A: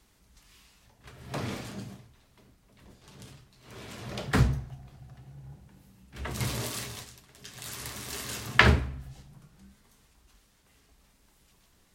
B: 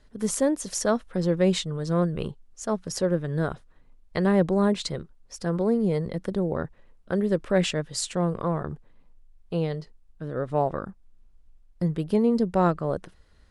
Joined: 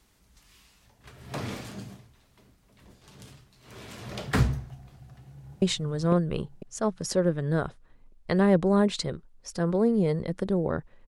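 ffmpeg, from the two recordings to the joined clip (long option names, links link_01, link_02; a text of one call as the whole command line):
ffmpeg -i cue0.wav -i cue1.wav -filter_complex "[0:a]apad=whole_dur=11.07,atrim=end=11.07,atrim=end=5.622[link_01];[1:a]atrim=start=1.478:end=6.93[link_02];[link_01][link_02]acrossfade=duration=0.004:curve1=hsin:curve2=hsin,asplit=2[link_03][link_04];[link_04]afade=type=in:start_time=5.1:duration=0.01,afade=type=out:start_time=5.62:duration=0.01,aecho=0:1:500|1000|1500|2000|2500:0.841395|0.294488|0.103071|0.0360748|0.0126262[link_05];[link_03][link_05]amix=inputs=2:normalize=0" out.wav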